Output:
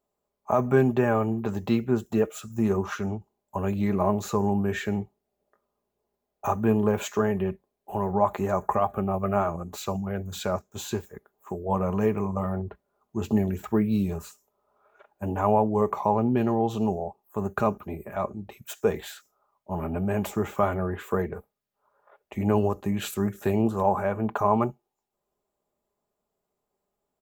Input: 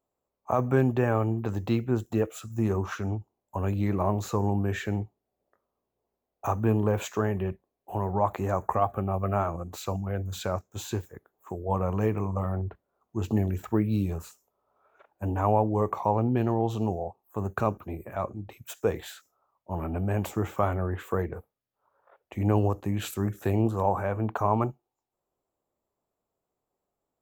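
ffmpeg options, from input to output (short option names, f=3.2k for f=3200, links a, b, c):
-af "aecho=1:1:4.9:0.47,volume=1.5dB"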